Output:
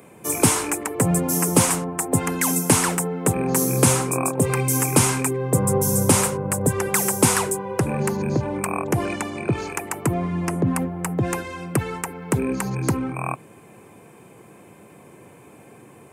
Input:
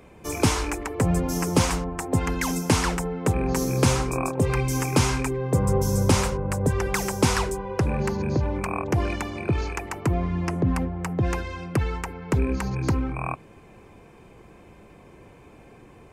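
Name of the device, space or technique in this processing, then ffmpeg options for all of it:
budget condenser microphone: -filter_complex "[0:a]highpass=f=110:w=0.5412,highpass=f=110:w=1.3066,highshelf=f=7000:t=q:w=1.5:g=9.5,asettb=1/sr,asplit=3[s0][s1][s2];[s0]atrim=end=9.054[s3];[s1]atrim=start=9.05:end=9.56,asetpts=PTS-STARTPTS,afade=t=in:d=0.004:c=qsin,afade=t=out:st=0.506:d=0.004:c=qsin,lowpass=8900[s4];[s2]atrim=start=9.556[s5];[s3][s4]acrossfade=d=0.004:c1=hsin:c2=qsin[s6];[s6][s5]acrossfade=d=0.004:c1=qsin:c2=hsin,volume=1.41"

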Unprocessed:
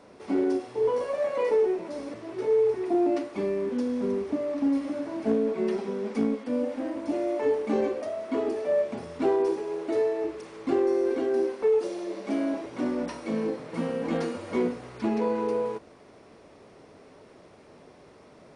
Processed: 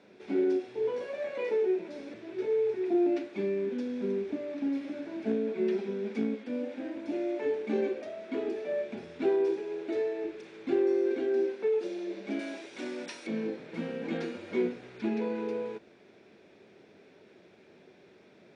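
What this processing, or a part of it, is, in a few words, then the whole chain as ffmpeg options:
car door speaker: -filter_complex "[0:a]asettb=1/sr,asplit=3[s0][s1][s2];[s0]atrim=end=12.394[s3];[s1]atrim=start=12.39:end=13.27,asetpts=PTS-STARTPTS,afade=t=in:d=0.004:c=qsin,afade=t=out:st=0.876:d=0.004:c=qsin,aemphasis=mode=production:type=riaa[s4];[s2]atrim=start=13.266[s5];[s3][s4]acrossfade=d=0.004:c1=hsin:c2=qsin[s6];[s6][s5]acrossfade=d=0.004:c1=qsin:c2=hsin,highpass=91,equalizer=f=200:t=q:w=4:g=7,equalizer=f=370:t=q:w=4:g=8,equalizer=f=1100:t=q:w=4:g=-7,equalizer=f=1600:t=q:w=4:g=7,equalizer=f=2400:t=q:w=4:g=9,equalizer=f=3600:t=q:w=4:g=8,lowpass=f=7700:w=0.5412,lowpass=f=7700:w=1.3066,volume=0.376"

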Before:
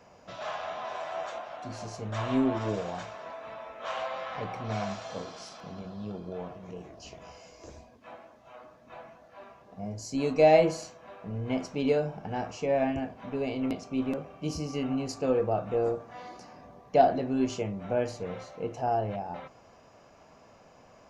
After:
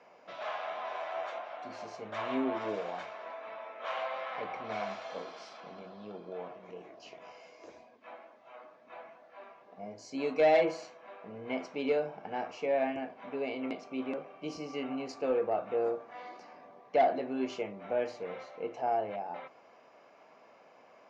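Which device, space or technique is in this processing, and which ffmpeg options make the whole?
intercom: -af "highpass=330,lowpass=3800,equalizer=f=2200:t=o:w=0.21:g=5,asoftclip=type=tanh:threshold=0.15,volume=0.841"

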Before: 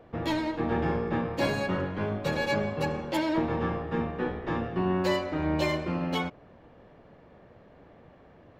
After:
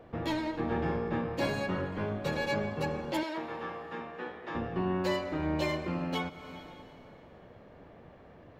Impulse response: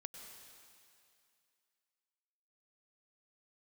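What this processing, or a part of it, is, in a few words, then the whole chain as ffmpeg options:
ducked reverb: -filter_complex "[0:a]asplit=3[s0][s1][s2];[1:a]atrim=start_sample=2205[s3];[s1][s3]afir=irnorm=-1:irlink=0[s4];[s2]apad=whole_len=378996[s5];[s4][s5]sidechaincompress=threshold=0.0112:ratio=8:attack=16:release=280,volume=1.68[s6];[s0][s6]amix=inputs=2:normalize=0,asettb=1/sr,asplit=3[s7][s8][s9];[s7]atrim=end=3.234[s10];[s8]atrim=start=3.23:end=4.55,asetpts=PTS-STARTPTS,afade=t=in:d=0.004:c=qsin,afade=t=out:st=1.316:d=0.004:c=qsin,highpass=f=810:p=1[s11];[s9]atrim=start=4.546[s12];[s10][s11]acrossfade=d=0.004:c1=hsin:c2=qsin[s13];[s13][s12]acrossfade=d=0.004:c1=qsin:c2=hsin,volume=0.562"

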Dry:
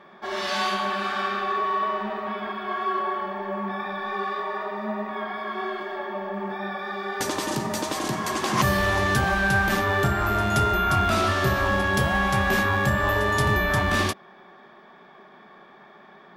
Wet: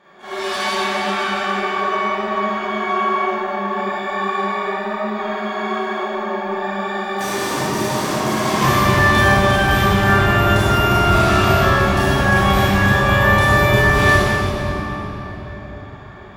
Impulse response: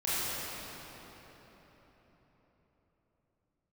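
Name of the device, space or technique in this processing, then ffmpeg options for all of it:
shimmer-style reverb: -filter_complex "[0:a]asplit=2[s0][s1];[s1]asetrate=88200,aresample=44100,atempo=0.5,volume=0.282[s2];[s0][s2]amix=inputs=2:normalize=0[s3];[1:a]atrim=start_sample=2205[s4];[s3][s4]afir=irnorm=-1:irlink=0,volume=0.708"

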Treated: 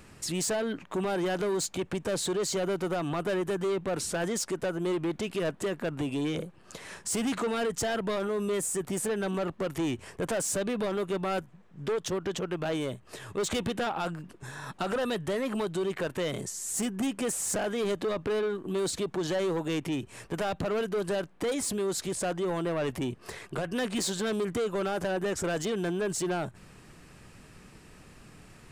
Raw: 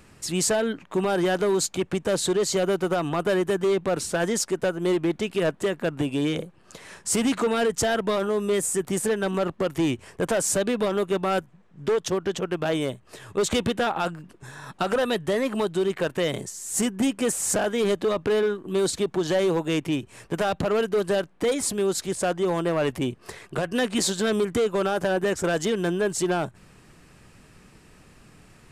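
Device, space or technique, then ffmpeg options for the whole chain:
soft clipper into limiter: -af "asoftclip=type=tanh:threshold=0.0944,alimiter=level_in=1.19:limit=0.0631:level=0:latency=1:release=33,volume=0.841"

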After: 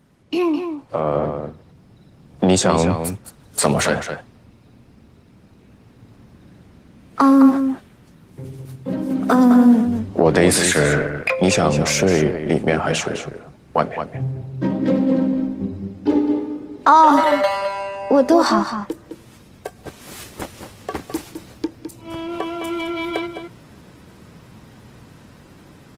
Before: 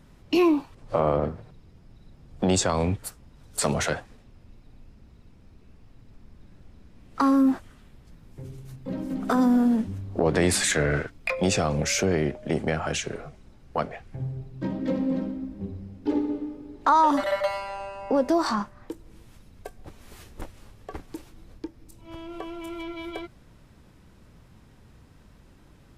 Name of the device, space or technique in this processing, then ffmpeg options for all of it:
video call: -filter_complex "[0:a]asettb=1/sr,asplit=3[s0][s1][s2];[s0]atrim=end=19.764[s3];[s1]atrim=start=19.76:end=21.65,asetpts=PTS-STARTPTS,afade=t=in:d=0.004:c=qsin,afade=t=out:st=1.886:d=0.004:c=qsin,highshelf=f=2700:g=5.5[s4];[s2]atrim=start=21.646[s5];[s3][s4]acrossfade=d=0.004:c1=hsin:c2=qsin[s6];[s6][s5]acrossfade=d=0.004:c1=qsin:c2=hsin,highpass=110,asplit=2[s7][s8];[s8]adelay=209.9,volume=0.398,highshelf=f=4000:g=-4.72[s9];[s7][s9]amix=inputs=2:normalize=0,dynaudnorm=f=900:g=3:m=3.76" -ar 48000 -c:a libopus -b:a 24k

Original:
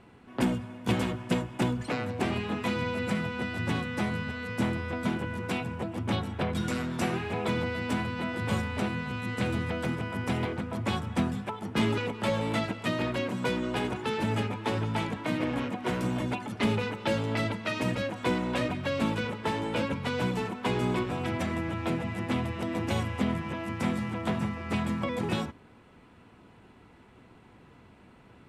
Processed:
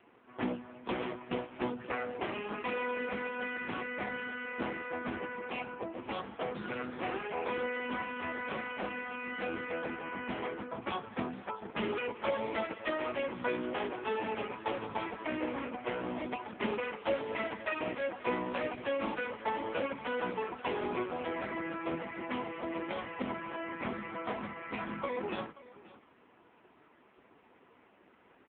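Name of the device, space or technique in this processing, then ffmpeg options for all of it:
satellite phone: -filter_complex "[0:a]asplit=3[s0][s1][s2];[s0]afade=t=out:st=15.65:d=0.02[s3];[s1]lowshelf=f=65:g=-5.5,afade=t=in:st=15.65:d=0.02,afade=t=out:st=16.61:d=0.02[s4];[s2]afade=t=in:st=16.61:d=0.02[s5];[s3][s4][s5]amix=inputs=3:normalize=0,highpass=350,lowpass=3400,aecho=1:1:530:0.119" -ar 8000 -c:a libopencore_amrnb -b:a 5900

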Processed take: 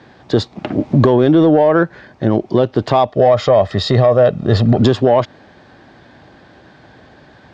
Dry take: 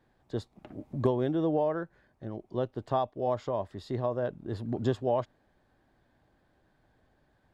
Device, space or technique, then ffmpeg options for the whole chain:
mastering chain: -filter_complex "[0:a]lowpass=f=5900:w=0.5412,lowpass=f=5900:w=1.3066,asettb=1/sr,asplit=3[s0][s1][s2];[s0]atrim=end=3.114[s3];[s1]atrim=start=3.11:end=4.81,asetpts=PTS-STARTPTS,afade=t=in:d=0.004:c=qsin,afade=t=out:st=1.696:d=0.004:c=qsin,aecho=1:1:1.6:0.6,atrim=end_sample=74970[s4];[s2]atrim=start=4.806[s5];[s3][s4]acrossfade=d=0.004:c1=hsin:c2=qsin[s6];[s6][s5]acrossfade=d=0.004:c1=qsin:c2=hsin,highpass=49,highpass=f=180:p=1,equalizer=f=720:t=o:w=2.9:g=-3.5,acompressor=threshold=0.02:ratio=2.5,asoftclip=type=tanh:threshold=0.0473,alimiter=level_in=37.6:limit=0.891:release=50:level=0:latency=1,volume=0.75"

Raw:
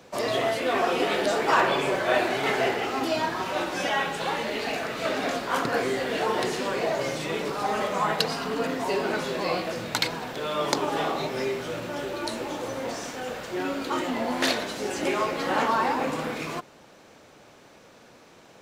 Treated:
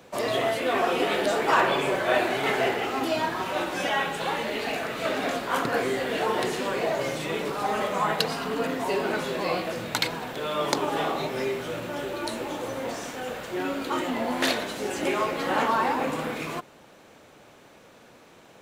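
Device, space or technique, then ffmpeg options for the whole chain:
exciter from parts: -filter_complex "[0:a]asplit=2[s0][s1];[s1]highpass=f=4200:p=1,asoftclip=type=tanh:threshold=0.0708,highpass=f=4100:w=0.5412,highpass=f=4100:w=1.3066,volume=0.473[s2];[s0][s2]amix=inputs=2:normalize=0"

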